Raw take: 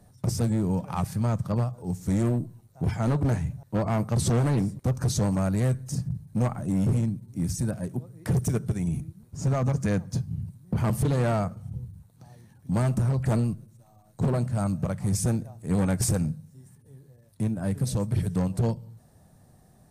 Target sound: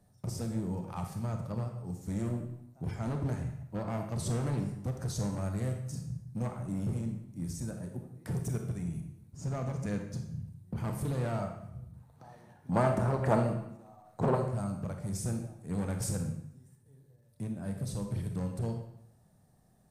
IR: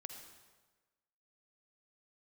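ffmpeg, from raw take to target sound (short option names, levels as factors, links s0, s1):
-filter_complex "[0:a]asplit=3[s0][s1][s2];[s0]afade=t=out:st=11.9:d=0.02[s3];[s1]equalizer=f=870:w=0.37:g=15,afade=t=in:st=11.9:d=0.02,afade=t=out:st=14.34:d=0.02[s4];[s2]afade=t=in:st=14.34:d=0.02[s5];[s3][s4][s5]amix=inputs=3:normalize=0[s6];[1:a]atrim=start_sample=2205,asetrate=74970,aresample=44100[s7];[s6][s7]afir=irnorm=-1:irlink=0"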